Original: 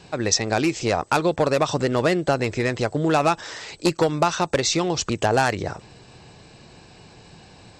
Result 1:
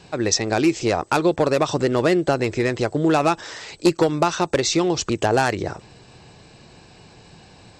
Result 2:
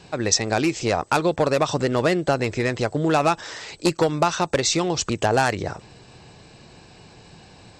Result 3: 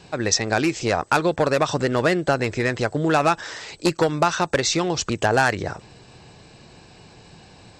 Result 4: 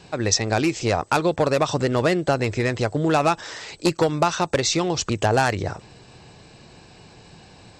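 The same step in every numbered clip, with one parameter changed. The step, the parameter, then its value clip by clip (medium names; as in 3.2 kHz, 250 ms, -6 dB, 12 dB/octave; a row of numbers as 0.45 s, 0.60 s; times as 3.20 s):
dynamic bell, frequency: 350 Hz, 8.5 kHz, 1.6 kHz, 100 Hz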